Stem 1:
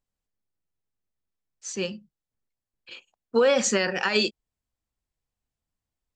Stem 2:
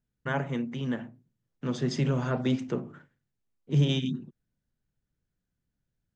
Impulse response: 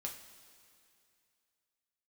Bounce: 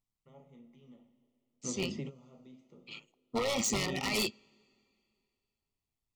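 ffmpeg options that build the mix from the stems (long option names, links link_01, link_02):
-filter_complex "[0:a]equalizer=frequency=520:width_type=o:width=0.43:gain=-9,tremolo=f=110:d=0.621,volume=-1.5dB,asplit=3[link_01][link_02][link_03];[link_02]volume=-21.5dB[link_04];[1:a]acrossover=split=780|2700[link_05][link_06][link_07];[link_05]acompressor=threshold=-26dB:ratio=4[link_08];[link_06]acompressor=threshold=-50dB:ratio=4[link_09];[link_07]acompressor=threshold=-48dB:ratio=4[link_10];[link_08][link_09][link_10]amix=inputs=3:normalize=0,highpass=180,volume=-7.5dB,asplit=2[link_11][link_12];[link_12]volume=-16.5dB[link_13];[link_03]apad=whole_len=271392[link_14];[link_11][link_14]sidechaingate=range=-33dB:threshold=-55dB:ratio=16:detection=peak[link_15];[2:a]atrim=start_sample=2205[link_16];[link_04][link_13]amix=inputs=2:normalize=0[link_17];[link_17][link_16]afir=irnorm=-1:irlink=0[link_18];[link_01][link_15][link_18]amix=inputs=3:normalize=0,aeval=exprs='0.0596*(abs(mod(val(0)/0.0596+3,4)-2)-1)':channel_layout=same,asuperstop=centerf=1600:order=8:qfactor=3.2"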